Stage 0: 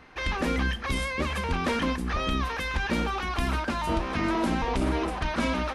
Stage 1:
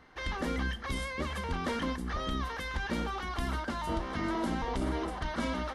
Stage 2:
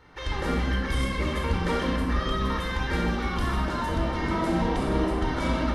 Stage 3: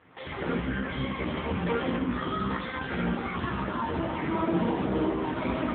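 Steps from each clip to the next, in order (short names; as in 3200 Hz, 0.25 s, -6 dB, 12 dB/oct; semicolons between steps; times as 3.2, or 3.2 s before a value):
notch 2500 Hz, Q 5.7; gain -6 dB
shoebox room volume 3300 m³, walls mixed, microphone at 4.4 m
gain +1 dB; AMR-NB 5.9 kbps 8000 Hz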